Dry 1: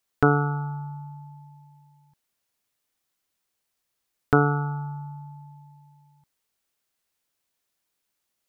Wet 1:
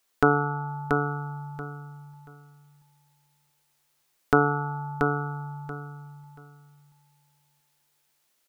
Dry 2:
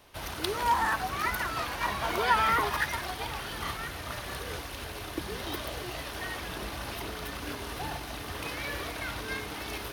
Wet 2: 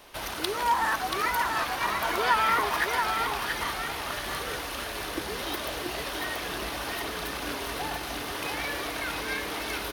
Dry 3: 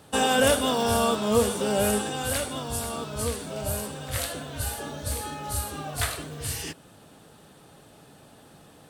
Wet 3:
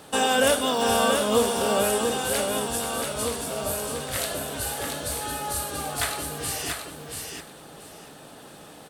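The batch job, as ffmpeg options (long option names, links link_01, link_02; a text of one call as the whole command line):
ffmpeg -i in.wav -filter_complex "[0:a]equalizer=frequency=87:width_type=o:width=1.9:gain=-10.5,asplit=2[link_01][link_02];[link_02]acompressor=threshold=-42dB:ratio=6,volume=1.5dB[link_03];[link_01][link_03]amix=inputs=2:normalize=0,aecho=1:1:682|1364|2046:0.562|0.112|0.0225" out.wav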